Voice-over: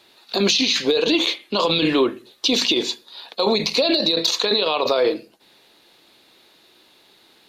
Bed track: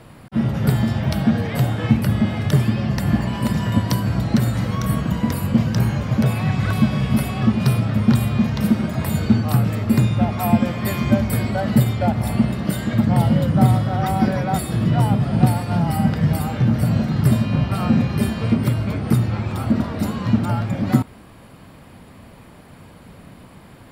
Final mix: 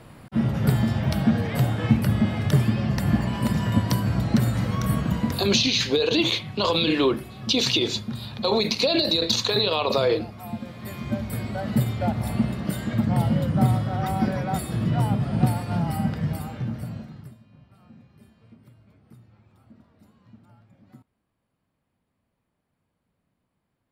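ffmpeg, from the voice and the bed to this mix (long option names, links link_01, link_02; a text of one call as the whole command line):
ffmpeg -i stem1.wav -i stem2.wav -filter_complex "[0:a]adelay=5050,volume=-3dB[link_01];[1:a]volume=8.5dB,afade=type=out:start_time=5.15:duration=0.57:silence=0.199526,afade=type=in:start_time=10.61:duration=1.44:silence=0.266073,afade=type=out:start_time=15.8:duration=1.54:silence=0.0398107[link_02];[link_01][link_02]amix=inputs=2:normalize=0" out.wav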